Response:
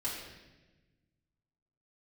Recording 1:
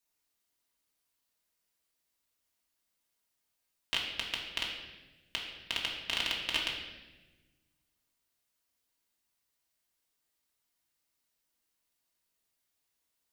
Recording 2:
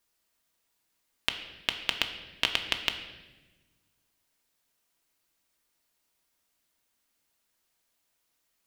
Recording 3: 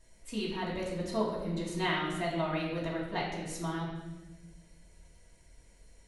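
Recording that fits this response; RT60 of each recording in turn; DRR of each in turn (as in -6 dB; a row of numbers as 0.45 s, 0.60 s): 3; 1.2 s, 1.2 s, 1.1 s; -3.5 dB, 4.5 dB, -8.5 dB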